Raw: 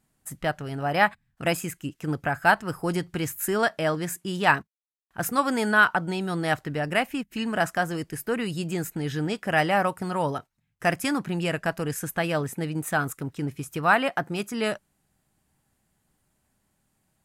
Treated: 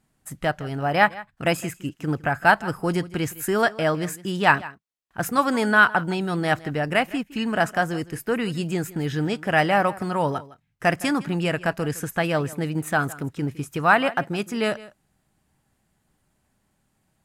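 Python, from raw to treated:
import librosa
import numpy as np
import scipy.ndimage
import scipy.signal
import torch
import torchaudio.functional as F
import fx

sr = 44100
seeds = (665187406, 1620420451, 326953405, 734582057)

p1 = fx.high_shelf(x, sr, hz=7400.0, db=-6.5)
p2 = fx.quant_float(p1, sr, bits=6)
p3 = p2 + fx.echo_single(p2, sr, ms=161, db=-19.0, dry=0)
y = p3 * 10.0 ** (3.0 / 20.0)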